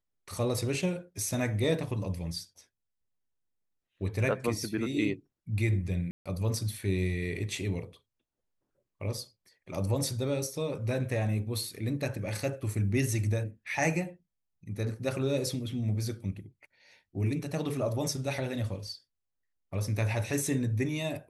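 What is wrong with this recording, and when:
6.11–6.26 s: dropout 146 ms

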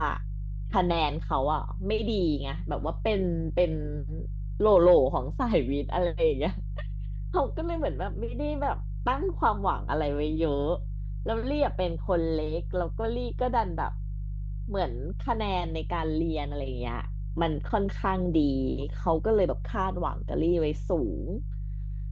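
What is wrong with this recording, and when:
hum 50 Hz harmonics 3 -33 dBFS

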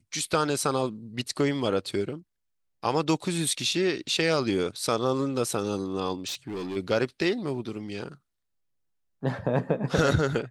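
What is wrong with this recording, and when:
6.27–6.77 s: clipped -30 dBFS

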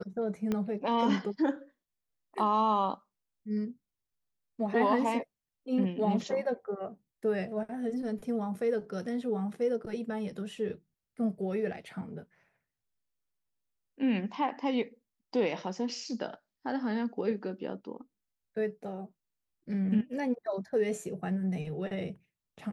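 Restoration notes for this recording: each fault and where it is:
0.52 s: pop -19 dBFS

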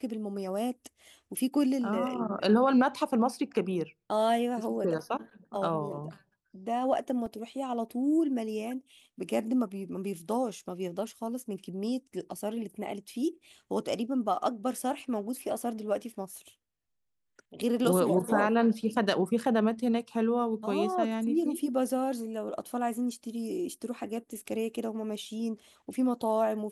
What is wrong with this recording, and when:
7.26 s: dropout 3.1 ms

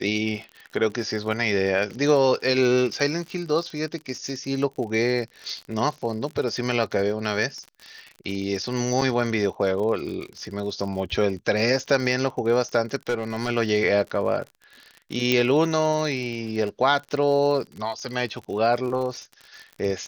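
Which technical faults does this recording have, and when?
crackle 57 per s -32 dBFS
9.01–9.02 s: dropout 5.1 ms
13.09–13.50 s: clipped -19.5 dBFS
15.32 s: pop -7 dBFS

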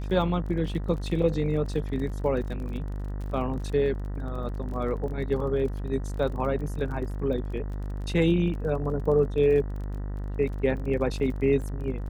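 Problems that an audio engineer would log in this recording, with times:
buzz 50 Hz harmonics 39 -32 dBFS
crackle 32 per s -36 dBFS

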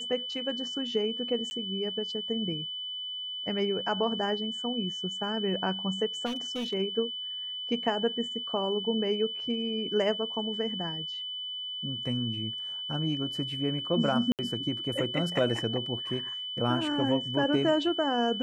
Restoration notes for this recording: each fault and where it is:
whine 3 kHz -34 dBFS
1.50–1.51 s: dropout 10 ms
6.25–6.74 s: clipped -29 dBFS
14.32–14.39 s: dropout 68 ms

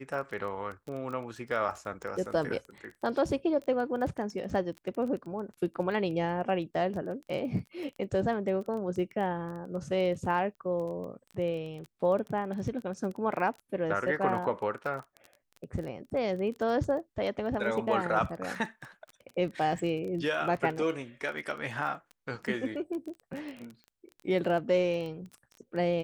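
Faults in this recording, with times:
crackle 17 per s -36 dBFS

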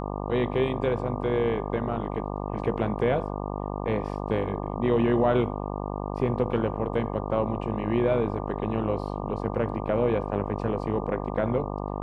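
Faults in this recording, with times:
buzz 50 Hz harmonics 24 -32 dBFS

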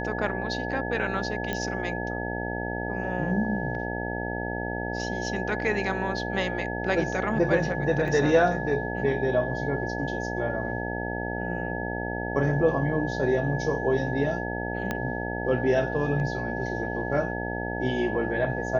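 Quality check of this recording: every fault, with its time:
buzz 60 Hz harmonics 15 -32 dBFS
whine 1.7 kHz -34 dBFS
1.53 s: pop -15 dBFS
8.08 s: dropout 2.4 ms
14.91 s: pop -14 dBFS

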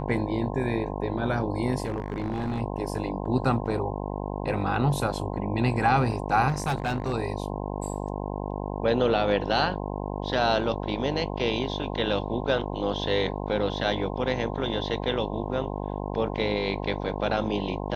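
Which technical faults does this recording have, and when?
buzz 50 Hz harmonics 21 -32 dBFS
1.84–2.61 s: clipped -24.5 dBFS
6.48–7.14 s: clipped -22.5 dBFS

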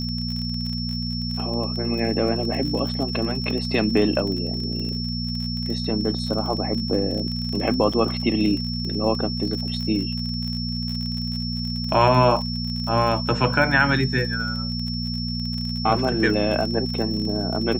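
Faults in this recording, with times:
crackle 38 per s -28 dBFS
hum 60 Hz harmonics 4 -28 dBFS
whine 5.4 kHz -30 dBFS
7.93–7.94 s: dropout 5.2 ms

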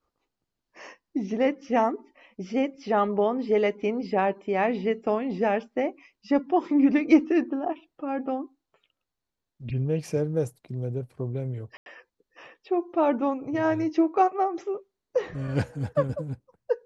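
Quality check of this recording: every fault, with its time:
11.77–11.86 s: dropout 91 ms

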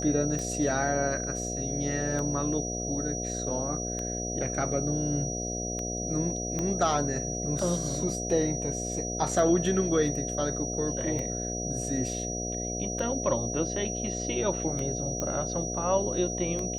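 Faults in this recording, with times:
buzz 60 Hz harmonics 12 -35 dBFS
tick 33 1/3 rpm -21 dBFS
whine 5.8 kHz -34 dBFS
6.59 s: pop -18 dBFS
15.20 s: pop -17 dBFS

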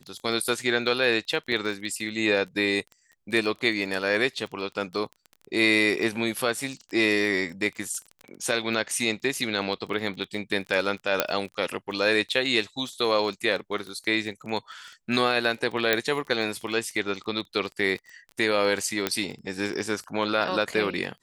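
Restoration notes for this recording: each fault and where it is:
crackle 20 per s -33 dBFS
1.52 s: dropout 4.8 ms
11.20 s: pop -4 dBFS
15.93 s: pop -6 dBFS
19.07 s: pop -8 dBFS

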